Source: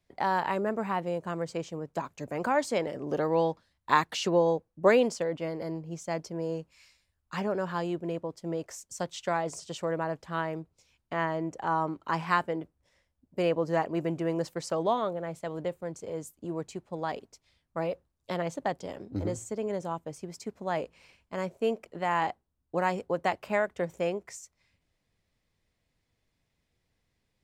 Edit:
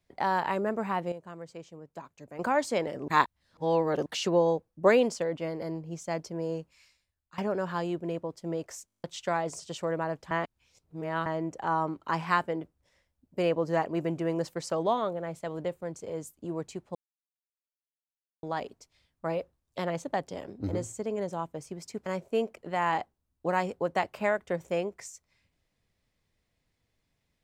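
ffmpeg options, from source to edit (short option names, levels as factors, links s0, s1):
-filter_complex "[0:a]asplit=19[s0][s1][s2][s3][s4][s5][s6][s7][s8][s9][s10][s11][s12][s13][s14][s15][s16][s17][s18];[s0]atrim=end=1.122[s19];[s1]atrim=start=1.118:end=2.392,asetpts=PTS-STARTPTS,volume=0.316[s20];[s2]atrim=start=2.388:end=3.082[s21];[s3]atrim=start=3.078:end=4.062,asetpts=PTS-STARTPTS,areverse[s22];[s4]atrim=start=4.058:end=7.38,asetpts=PTS-STARTPTS,afade=t=out:st=2.522:d=0.8:silence=0.16788[s23];[s5]atrim=start=7.38:end=8.882,asetpts=PTS-STARTPTS,afade=t=in:d=0.004:c=hsin:silence=0.16788[s24];[s6]atrim=start=8.858:end=8.882[s25];[s7]atrim=start=8.858:end=8.882[s26];[s8]atrim=start=8.858:end=8.882[s27];[s9]atrim=start=8.858:end=8.882[s28];[s10]atrim=start=8.858:end=8.882[s29];[s11]atrim=start=8.858:end=8.882[s30];[s12]atrim=start=8.858:end=8.882[s31];[s13]atrim=start=8.858:end=8.882[s32];[s14]atrim=start=9.038:end=10.312[s33];[s15]atrim=start=10.308:end=11.262,asetpts=PTS-STARTPTS,areverse[s34];[s16]atrim=start=11.258:end=16.95,asetpts=PTS-STARTPTS,afade=t=out:st=5.688:d=0.004:c=hsin,apad=pad_dur=1.48[s35];[s17]atrim=start=16.95:end=20.582,asetpts=PTS-STARTPTS,afade=t=in:d=0.004:c=hsin[s36];[s18]atrim=start=21.348[s37];[s19][s20]acrossfade=d=0.004:c1=hsin:c2=hsin[s38];[s38][s21]acrossfade=d=0.004:c1=hsin:c2=hsin[s39];[s39][s22]acrossfade=d=0.004:c1=hsin:c2=hsin[s40];[s23][s24]concat=n=2:v=0:a=1[s41];[s40][s41]acrossfade=d=0.004:c1=hsin:c2=hsin[s42];[s42][s25]acrossfade=d=0.004:c1=hsin:c2=hsin[s43];[s43][s26]acrossfade=d=0.004:c1=hsin:c2=hsin[s44];[s44][s27]acrossfade=d=0.004:c1=hsin:c2=hsin[s45];[s45][s28]acrossfade=d=0.004:c1=hsin:c2=hsin[s46];[s46][s29]acrossfade=d=0.004:c1=hsin:c2=hsin[s47];[s47][s30]acrossfade=d=0.004:c1=hsin:c2=hsin[s48];[s48][s31]acrossfade=d=0.004:c1=hsin:c2=hsin[s49];[s49][s32]acrossfade=d=0.004:c1=hsin:c2=hsin[s50];[s50][s33]acrossfade=d=0.004:c1=hsin:c2=hsin[s51];[s51][s34]acrossfade=d=0.004:c1=hsin:c2=hsin[s52];[s35][s36]concat=n=2:v=0:a=1[s53];[s52][s53]acrossfade=d=0.004:c1=hsin:c2=hsin[s54];[s54][s37]acrossfade=d=0.004:c1=hsin:c2=hsin"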